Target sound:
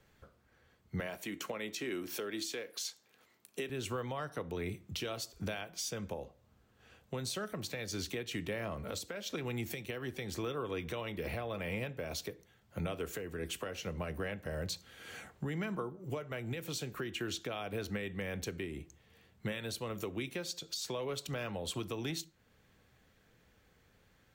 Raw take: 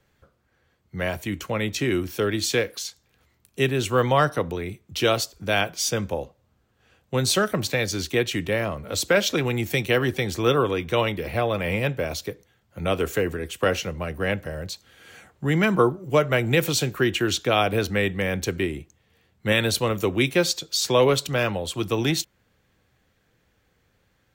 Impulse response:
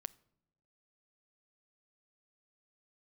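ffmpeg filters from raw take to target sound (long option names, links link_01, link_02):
-filter_complex "[0:a]asettb=1/sr,asplit=3[link_01][link_02][link_03];[link_01]atrim=end=1.004[link_04];[link_02]atrim=start=1:end=3.7,asetpts=PTS-STARTPTS,afade=type=in:duration=0.004:curve=qsin,afade=type=out:start_time=2.696:duration=0.004:curve=qsin,highpass=260[link_05];[link_03]atrim=start=3.696[link_06];[link_04][link_05]acrossfade=duration=0.004:curve1=hsin:curve2=qsin[link_07];[link_07][link_06]acrossfade=duration=0.004:curve1=qsin:curve2=hsin,acompressor=threshold=-31dB:ratio=6,alimiter=level_in=3dB:limit=-24dB:level=0:latency=1:release=416,volume=-3dB[link_08];[1:a]atrim=start_sample=2205,afade=type=out:start_time=0.31:duration=0.01,atrim=end_sample=14112,asetrate=66150,aresample=44100[link_09];[link_08][link_09]afir=irnorm=-1:irlink=0,volume=6.5dB"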